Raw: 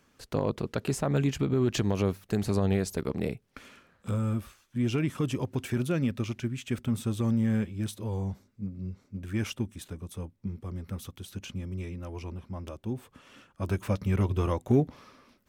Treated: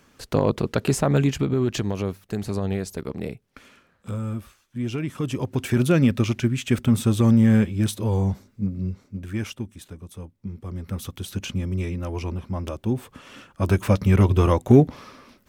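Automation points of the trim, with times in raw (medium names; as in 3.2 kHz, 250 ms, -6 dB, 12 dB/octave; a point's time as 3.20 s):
1.01 s +8 dB
2.04 s 0 dB
5.05 s 0 dB
5.88 s +10 dB
8.78 s +10 dB
9.55 s 0 dB
10.34 s 0 dB
11.21 s +9.5 dB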